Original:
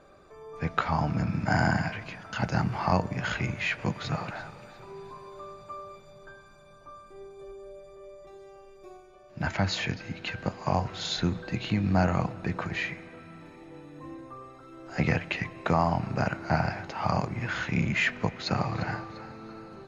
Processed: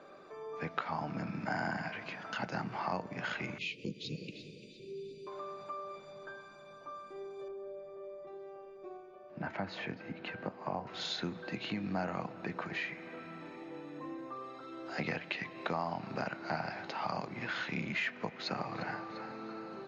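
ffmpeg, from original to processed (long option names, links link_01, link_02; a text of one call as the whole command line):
ffmpeg -i in.wav -filter_complex "[0:a]asettb=1/sr,asplit=3[link_01][link_02][link_03];[link_01]atrim=end=3.584[link_04];[link_02]atrim=start=3.58:end=5.27,asetpts=PTS-STARTPTS,afade=type=in:duration=0.004:curve=qsin,afade=type=out:start_time=1.686:duration=0.004:curve=qsin,asuperstop=centerf=1100:order=12:qfactor=0.53[link_05];[link_03]atrim=start=5.266[link_06];[link_04][link_05]acrossfade=duration=0.004:curve1=hsin:curve2=qsin[link_07];[link_07][link_06]acrossfade=duration=0.004:curve1=qsin:curve2=hsin,asettb=1/sr,asplit=3[link_08][link_09][link_10];[link_08]atrim=end=7.484[link_11];[link_09]atrim=start=7.48:end=10.87,asetpts=PTS-STARTPTS,afade=type=in:duration=0.004:curve=qsin,afade=type=out:start_time=3.386:duration=0.004:curve=qsin,lowpass=frequency=1200:poles=1[link_12];[link_10]atrim=start=10.866[link_13];[link_11][link_12]acrossfade=duration=0.004:curve1=hsin:curve2=qsin[link_14];[link_14][link_13]acrossfade=duration=0.004:curve1=qsin:curve2=hsin,asettb=1/sr,asplit=3[link_15][link_16][link_17];[link_15]atrim=end=14.324[link_18];[link_16]atrim=start=14.32:end=18,asetpts=PTS-STARTPTS,afade=type=in:duration=0.004:curve=qsin,afade=type=out:start_time=3.676:duration=0.004:curve=qsin,equalizer=frequency=4000:width=2:gain=6[link_19];[link_17]atrim=start=17.996[link_20];[link_18][link_19]acrossfade=duration=0.004:curve1=hsin:curve2=qsin[link_21];[link_21][link_20]acrossfade=duration=0.004:curve1=qsin:curve2=hsin,acrossover=split=170 6400:gain=0.0794 1 0.0631[link_22][link_23][link_24];[link_22][link_23][link_24]amix=inputs=3:normalize=0,acompressor=threshold=-43dB:ratio=2,volume=2dB" out.wav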